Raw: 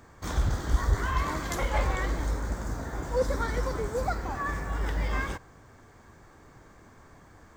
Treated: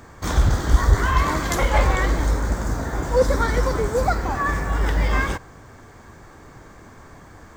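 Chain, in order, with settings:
level +9 dB

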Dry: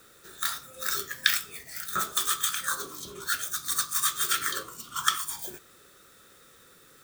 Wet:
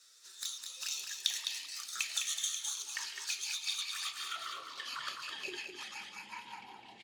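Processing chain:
band-pass filter sweep 5,300 Hz → 210 Hz, 0:03.33–0:05.91
in parallel at +2.5 dB: downward compressor 8 to 1, threshold −47 dBFS, peak gain reduction 22 dB
on the sum: dynamic equaliser 440 Hz, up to −5 dB, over −56 dBFS, Q 1.1
flanger swept by the level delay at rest 11.6 ms, full sweep at −35 dBFS
delay with pitch and tempo change per echo 224 ms, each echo −6 semitones, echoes 2, each echo −6 dB
on a send: single-tap delay 208 ms −6 dB

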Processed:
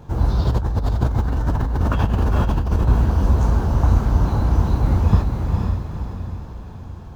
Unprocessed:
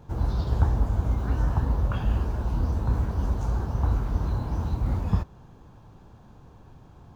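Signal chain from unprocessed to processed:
feedback delay with all-pass diffusion 479 ms, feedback 47%, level −3.5 dB
0:00.45–0:02.88: compressor whose output falls as the input rises −26 dBFS, ratio −1
level +7.5 dB

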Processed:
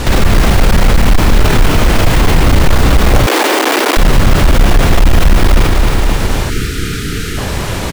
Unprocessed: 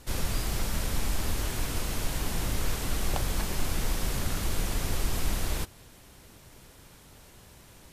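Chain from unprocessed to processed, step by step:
stylus tracing distortion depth 0.35 ms
low-pass filter 4,000 Hz 6 dB per octave
double-tracking delay 31 ms −8.5 dB
repeating echo 262 ms, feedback 44%, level −7 dB
gain into a clipping stage and back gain 23.5 dB
0:03.26–0:03.97: Butterworth high-pass 280 Hz 48 dB per octave
0:06.50–0:07.38: gain on a spectral selection 490–1,200 Hz −24 dB
boost into a limiter +35.5 dB
level −1 dB

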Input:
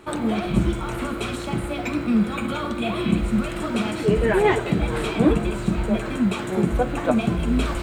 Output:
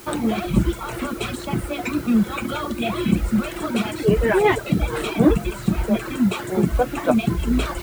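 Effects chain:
reverb reduction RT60 0.98 s
in parallel at −9 dB: bit-depth reduction 6 bits, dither triangular

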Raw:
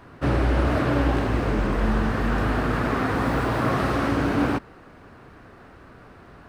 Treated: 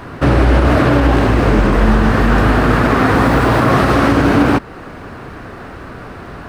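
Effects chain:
in parallel at 0 dB: downward compressor, threshold −33 dBFS, peak gain reduction 15.5 dB
on the sum: boost into a limiter +11 dB
level −1 dB

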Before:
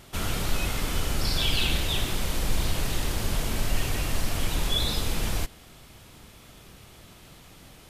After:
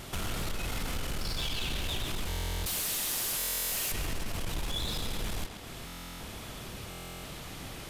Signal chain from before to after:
0:02.66–0:03.92: RIAA equalisation recording
downward compressor 2.5 to 1, threshold −39 dBFS, peak gain reduction 13.5 dB
soft clipping −34.5 dBFS, distortion −13 dB
on a send: tape delay 132 ms, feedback 72%, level −5 dB, low-pass 5,600 Hz
on the sum: buffer that repeats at 0:02.28/0:03.37/0:05.86/0:06.89, samples 1,024, times 14
level +6.5 dB

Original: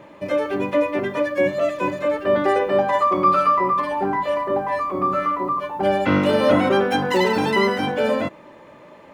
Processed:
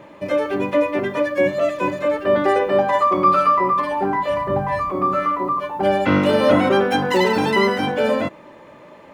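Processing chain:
0:04.30–0:04.91: low shelf with overshoot 200 Hz +11 dB, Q 1.5
level +1.5 dB

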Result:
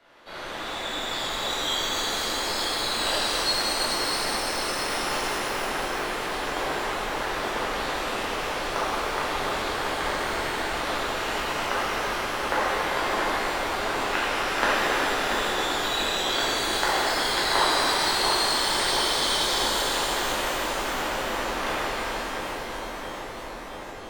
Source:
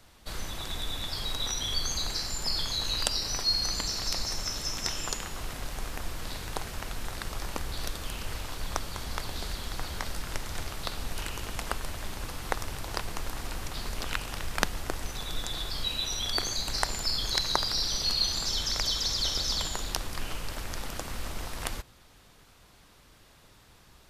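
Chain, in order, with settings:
three-way crossover with the lows and the highs turned down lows −22 dB, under 240 Hz, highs −20 dB, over 3,400 Hz
on a send: feedback echo with a low-pass in the loop 684 ms, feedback 77%, low-pass 1,600 Hz, level −4 dB
on the sum: reverb with rising layers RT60 3.7 s, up +12 semitones, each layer −8 dB, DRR −11 dB

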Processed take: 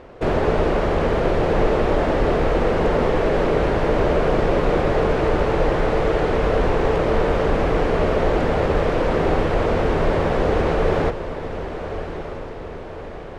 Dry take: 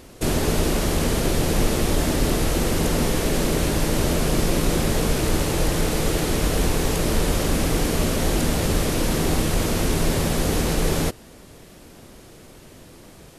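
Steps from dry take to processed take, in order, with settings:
low-pass filter 1,700 Hz 12 dB per octave
low shelf with overshoot 360 Hz −6 dB, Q 1.5
on a send: feedback delay with all-pass diffusion 1,210 ms, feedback 53%, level −10.5 dB
on the sum: level +6 dB

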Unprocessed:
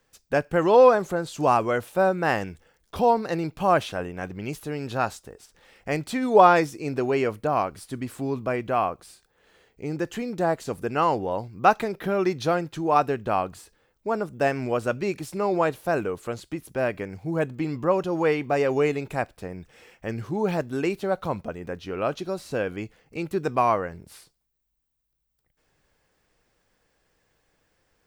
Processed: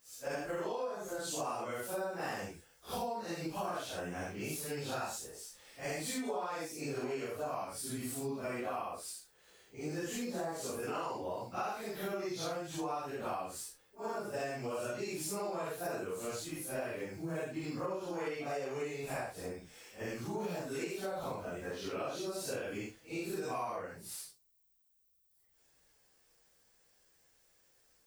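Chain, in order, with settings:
random phases in long frames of 200 ms
bass and treble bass −4 dB, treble +12 dB
downward compressor 16 to 1, threshold −29 dBFS, peak gain reduction 19.5 dB
level −5.5 dB

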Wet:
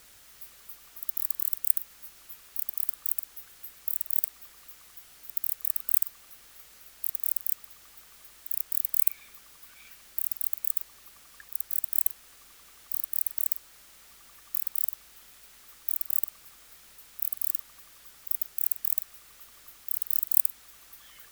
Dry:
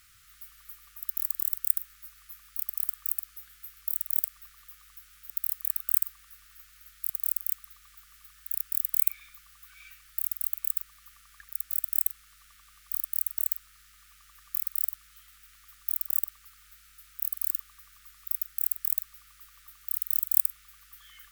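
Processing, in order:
harmonic and percussive parts rebalanced percussive +8 dB
background noise white −49 dBFS
level −6.5 dB

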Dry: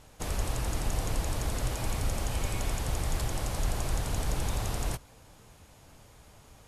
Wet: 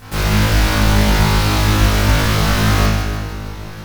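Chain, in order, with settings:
in parallel at +2.5 dB: wrap-around overflow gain 31.5 dB
on the sum: echo with a time of its own for lows and highs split 400 Hz, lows 455 ms, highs 269 ms, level −7 dB
spring reverb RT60 1.1 s, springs 33 ms, chirp 80 ms, DRR −9.5 dB
wrong playback speed 45 rpm record played at 78 rpm
level +4 dB

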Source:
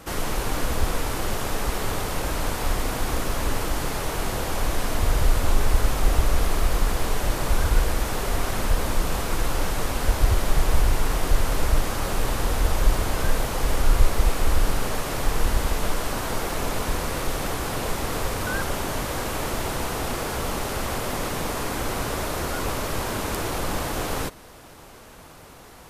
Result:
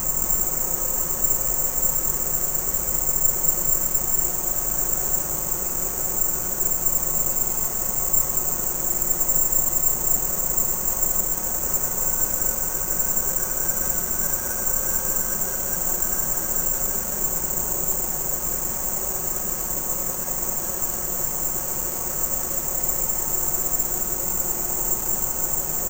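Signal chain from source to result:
low-pass filter 1,400 Hz 6 dB per octave
comb filter 5.5 ms
extreme stretch with random phases 8.8×, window 1.00 s, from 0:16.91
single-tap delay 208 ms −5.5 dB
on a send at −10.5 dB: convolution reverb RT60 1.6 s, pre-delay 80 ms
on the sum: bad sample-rate conversion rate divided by 6×, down filtered, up zero stuff
level −8 dB

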